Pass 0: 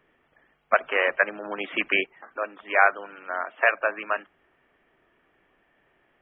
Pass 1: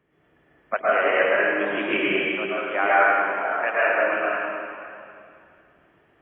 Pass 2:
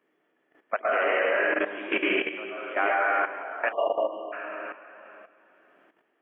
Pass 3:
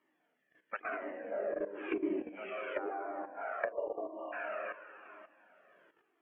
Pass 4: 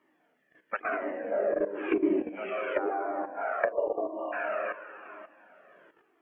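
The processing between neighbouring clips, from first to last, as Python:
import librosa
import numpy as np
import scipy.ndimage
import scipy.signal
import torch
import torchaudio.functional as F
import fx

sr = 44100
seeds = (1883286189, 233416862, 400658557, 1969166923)

y1 = scipy.signal.sosfilt(scipy.signal.butter(2, 63.0, 'highpass', fs=sr, output='sos'), x)
y1 = fx.low_shelf(y1, sr, hz=360.0, db=11.0)
y1 = fx.rev_plate(y1, sr, seeds[0], rt60_s=2.4, hf_ratio=1.0, predelay_ms=100, drr_db=-9.0)
y1 = F.gain(torch.from_numpy(y1), -7.5).numpy()
y2 = scipy.signal.sosfilt(scipy.signal.butter(4, 240.0, 'highpass', fs=sr, output='sos'), y1)
y2 = fx.spec_erase(y2, sr, start_s=3.72, length_s=0.6, low_hz=1200.0, high_hz=2800.0)
y2 = fx.level_steps(y2, sr, step_db=12)
y3 = fx.spec_box(y2, sr, start_s=0.36, length_s=0.96, low_hz=340.0, high_hz=1500.0, gain_db=-8)
y3 = fx.env_lowpass_down(y3, sr, base_hz=490.0, full_db=-24.5)
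y3 = fx.comb_cascade(y3, sr, direction='falling', hz=0.96)
y4 = fx.high_shelf(y3, sr, hz=2700.0, db=-7.0)
y4 = F.gain(torch.from_numpy(y4), 8.5).numpy()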